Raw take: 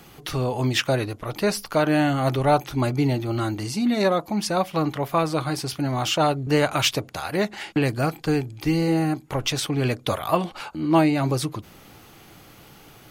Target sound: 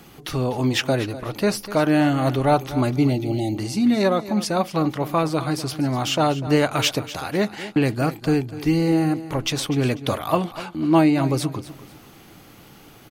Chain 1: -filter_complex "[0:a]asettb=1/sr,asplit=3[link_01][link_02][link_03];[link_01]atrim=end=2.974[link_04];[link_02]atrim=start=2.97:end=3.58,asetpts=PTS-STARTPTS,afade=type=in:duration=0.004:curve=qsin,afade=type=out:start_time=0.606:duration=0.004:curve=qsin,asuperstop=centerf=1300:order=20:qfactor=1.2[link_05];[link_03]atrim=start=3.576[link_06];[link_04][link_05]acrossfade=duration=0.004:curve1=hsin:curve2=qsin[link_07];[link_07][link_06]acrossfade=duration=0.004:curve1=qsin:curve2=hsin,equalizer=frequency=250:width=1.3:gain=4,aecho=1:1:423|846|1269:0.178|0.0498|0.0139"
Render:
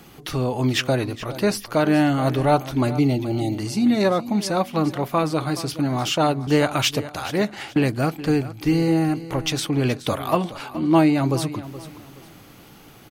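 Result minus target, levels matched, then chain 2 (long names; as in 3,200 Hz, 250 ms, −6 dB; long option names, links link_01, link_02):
echo 176 ms late
-filter_complex "[0:a]asettb=1/sr,asplit=3[link_01][link_02][link_03];[link_01]atrim=end=2.974[link_04];[link_02]atrim=start=2.97:end=3.58,asetpts=PTS-STARTPTS,afade=type=in:duration=0.004:curve=qsin,afade=type=out:start_time=0.606:duration=0.004:curve=qsin,asuperstop=centerf=1300:order=20:qfactor=1.2[link_05];[link_03]atrim=start=3.576[link_06];[link_04][link_05]acrossfade=duration=0.004:curve1=hsin:curve2=qsin[link_07];[link_07][link_06]acrossfade=duration=0.004:curve1=qsin:curve2=hsin,equalizer=frequency=250:width=1.3:gain=4,aecho=1:1:247|494|741:0.178|0.0498|0.0139"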